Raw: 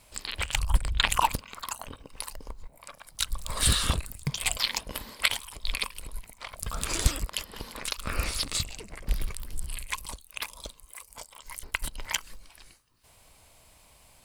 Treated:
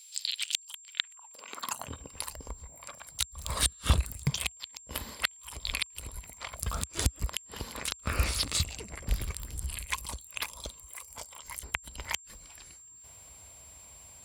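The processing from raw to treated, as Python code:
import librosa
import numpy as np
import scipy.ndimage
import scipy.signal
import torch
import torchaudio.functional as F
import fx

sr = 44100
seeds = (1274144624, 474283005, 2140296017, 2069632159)

y = fx.gate_flip(x, sr, shuts_db=-10.0, range_db=-41)
y = fx.filter_sweep_highpass(y, sr, from_hz=3800.0, to_hz=63.0, start_s=0.79, end_s=2.01, q=1.9)
y = y + 10.0 ** (-50.0 / 20.0) * np.sin(2.0 * np.pi * 7400.0 * np.arange(len(y)) / sr)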